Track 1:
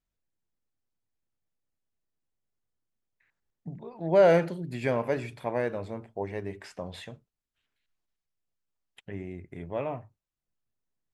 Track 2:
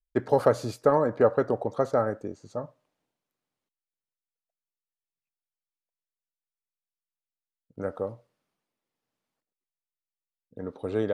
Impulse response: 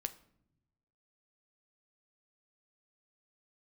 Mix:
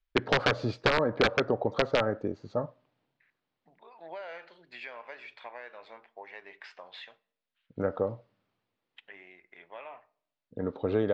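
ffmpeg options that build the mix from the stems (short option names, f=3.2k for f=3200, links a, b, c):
-filter_complex "[0:a]highpass=1.1k,acompressor=threshold=-42dB:ratio=6,volume=-2dB,asplit=2[a][b];[b]volume=-3.5dB[c];[1:a]aeval=exprs='(mod(4.47*val(0)+1,2)-1)/4.47':c=same,volume=3dB,asplit=2[d][e];[e]volume=-23dB[f];[2:a]atrim=start_sample=2205[g];[c][f]amix=inputs=2:normalize=0[h];[h][g]afir=irnorm=-1:irlink=0[i];[a][d][i]amix=inputs=3:normalize=0,lowpass=f=4.3k:w=0.5412,lowpass=f=4.3k:w=1.3066,acompressor=threshold=-23dB:ratio=3"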